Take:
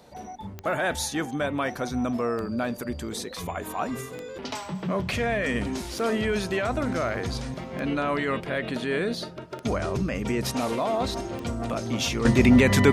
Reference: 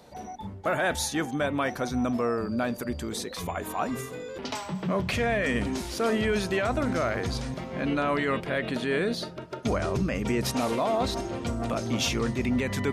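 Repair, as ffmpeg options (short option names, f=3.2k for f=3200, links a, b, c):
-af "adeclick=t=4,asetnsamples=n=441:p=0,asendcmd='12.25 volume volume -10dB',volume=0dB"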